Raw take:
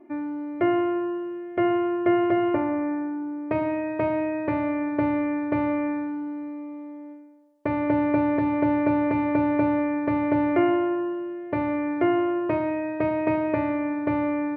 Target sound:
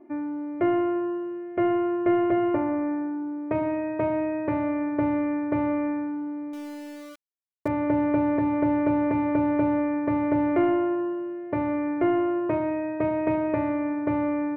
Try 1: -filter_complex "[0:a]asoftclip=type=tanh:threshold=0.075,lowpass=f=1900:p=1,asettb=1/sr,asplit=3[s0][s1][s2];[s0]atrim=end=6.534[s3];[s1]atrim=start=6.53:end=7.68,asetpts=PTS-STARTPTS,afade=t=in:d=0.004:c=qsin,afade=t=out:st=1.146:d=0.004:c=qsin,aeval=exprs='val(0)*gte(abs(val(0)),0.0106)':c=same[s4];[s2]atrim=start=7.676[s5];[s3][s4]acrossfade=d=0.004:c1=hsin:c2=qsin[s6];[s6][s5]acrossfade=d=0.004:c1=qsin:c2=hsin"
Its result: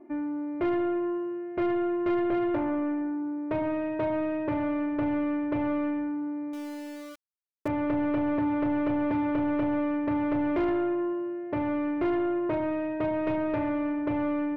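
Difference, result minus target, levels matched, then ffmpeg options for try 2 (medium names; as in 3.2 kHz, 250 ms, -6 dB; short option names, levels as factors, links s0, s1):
saturation: distortion +15 dB
-filter_complex "[0:a]asoftclip=type=tanh:threshold=0.282,lowpass=f=1900:p=1,asettb=1/sr,asplit=3[s0][s1][s2];[s0]atrim=end=6.534[s3];[s1]atrim=start=6.53:end=7.68,asetpts=PTS-STARTPTS,afade=t=in:d=0.004:c=qsin,afade=t=out:st=1.146:d=0.004:c=qsin,aeval=exprs='val(0)*gte(abs(val(0)),0.0106)':c=same[s4];[s2]atrim=start=7.676[s5];[s3][s4]acrossfade=d=0.004:c1=hsin:c2=qsin[s6];[s6][s5]acrossfade=d=0.004:c1=qsin:c2=hsin"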